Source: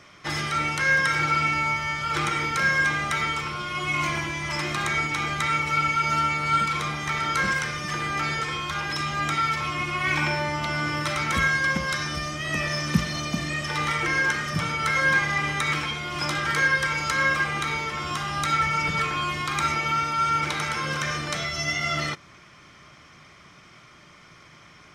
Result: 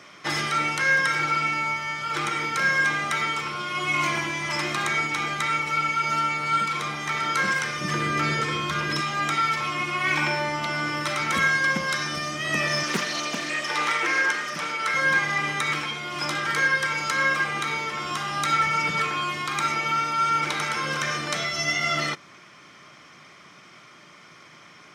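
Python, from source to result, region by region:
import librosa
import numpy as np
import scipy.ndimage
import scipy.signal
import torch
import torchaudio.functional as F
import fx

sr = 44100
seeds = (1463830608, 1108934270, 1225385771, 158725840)

y = fx.chain(x, sr, fx.low_shelf(hz=440.0, db=9.0),
    fx.notch(hz=800.0, q=5.5), at=(7.81, 9.0))
y = fx.chain(y, sr, fx.highpass(hz=300.0, slope=12),
    fx.doppler_dist(depth_ms=0.63), at=(12.83, 14.94))
y = scipy.signal.sosfilt(scipy.signal.butter(2, 180.0, 'highpass', fs=sr, output='sos'), y)
y = fx.rider(y, sr, range_db=10, speed_s=2.0)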